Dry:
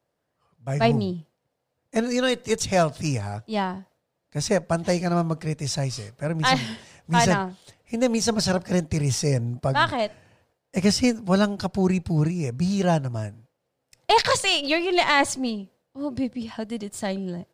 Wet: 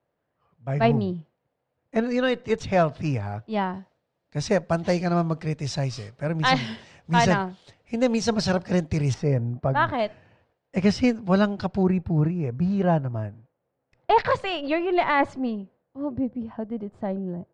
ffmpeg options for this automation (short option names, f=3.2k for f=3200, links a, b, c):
-af "asetnsamples=n=441:p=0,asendcmd='3.74 lowpass f 4600;9.14 lowpass f 1800;9.94 lowpass f 3300;11.83 lowpass f 1700;16.12 lowpass f 1000',lowpass=2.7k"